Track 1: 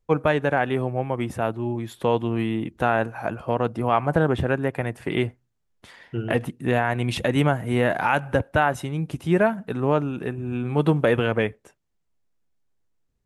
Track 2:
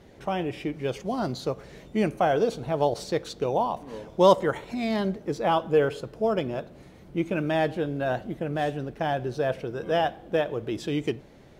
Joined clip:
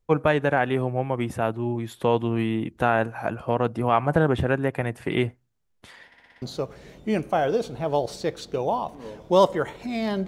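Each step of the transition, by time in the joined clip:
track 1
6.06 s: stutter in place 0.06 s, 6 plays
6.42 s: go over to track 2 from 1.30 s

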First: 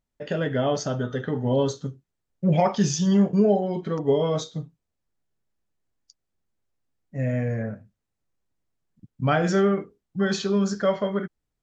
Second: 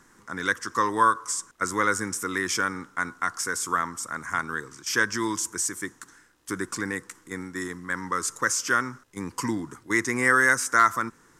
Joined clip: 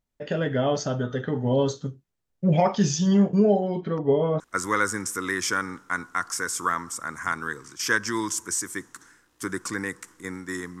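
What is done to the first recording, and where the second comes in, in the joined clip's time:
first
3.70–4.40 s: low-pass 5.5 kHz -> 1.5 kHz
4.40 s: go over to second from 1.47 s

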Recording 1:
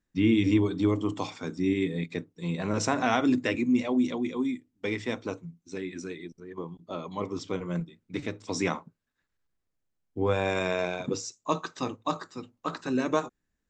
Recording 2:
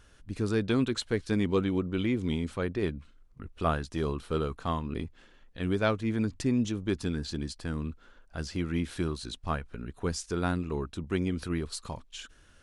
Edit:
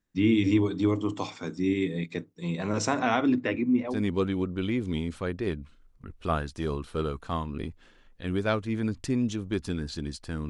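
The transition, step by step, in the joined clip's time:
recording 1
2.99–4.03 s: low-pass 4.9 kHz -> 1.3 kHz
3.94 s: go over to recording 2 from 1.30 s, crossfade 0.18 s

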